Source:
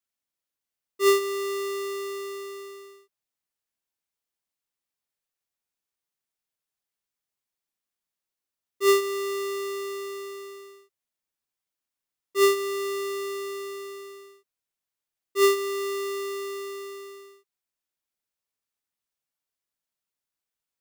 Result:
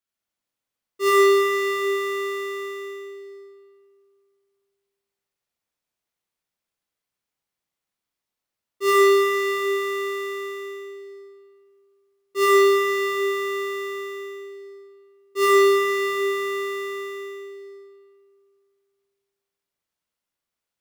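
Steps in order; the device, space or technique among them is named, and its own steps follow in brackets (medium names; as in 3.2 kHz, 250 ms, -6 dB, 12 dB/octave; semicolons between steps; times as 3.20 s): swimming-pool hall (reverberation RT60 2.3 s, pre-delay 45 ms, DRR -4.5 dB; treble shelf 5.6 kHz -5 dB)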